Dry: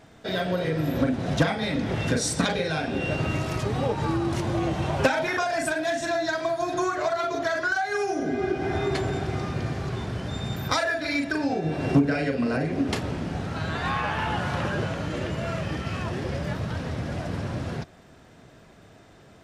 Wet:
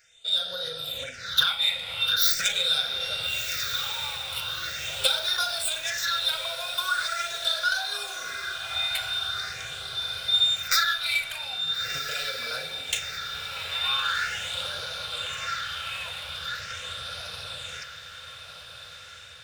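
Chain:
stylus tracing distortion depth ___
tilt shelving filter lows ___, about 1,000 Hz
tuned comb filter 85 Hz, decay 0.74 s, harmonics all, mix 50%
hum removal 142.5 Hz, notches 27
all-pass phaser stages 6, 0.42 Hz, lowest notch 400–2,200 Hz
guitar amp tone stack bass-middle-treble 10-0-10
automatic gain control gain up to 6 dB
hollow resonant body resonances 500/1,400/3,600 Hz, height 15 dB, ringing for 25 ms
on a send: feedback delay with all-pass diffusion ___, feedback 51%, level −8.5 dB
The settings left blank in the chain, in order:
0.17 ms, −10 dB, 1,384 ms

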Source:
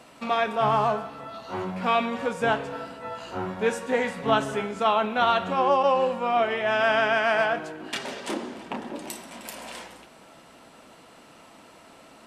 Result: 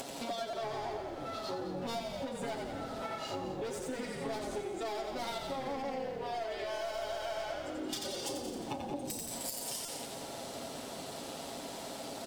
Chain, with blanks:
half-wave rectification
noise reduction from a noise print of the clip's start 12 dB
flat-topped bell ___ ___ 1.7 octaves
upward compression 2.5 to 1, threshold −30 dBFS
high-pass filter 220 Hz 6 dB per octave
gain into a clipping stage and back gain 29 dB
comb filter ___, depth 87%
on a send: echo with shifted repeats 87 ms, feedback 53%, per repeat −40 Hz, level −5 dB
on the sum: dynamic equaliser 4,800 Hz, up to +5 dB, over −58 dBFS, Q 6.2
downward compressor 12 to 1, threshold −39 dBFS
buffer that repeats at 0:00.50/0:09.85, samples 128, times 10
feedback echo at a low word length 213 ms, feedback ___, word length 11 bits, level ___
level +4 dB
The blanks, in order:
1,700 Hz, −9 dB, 7.3 ms, 35%, −13 dB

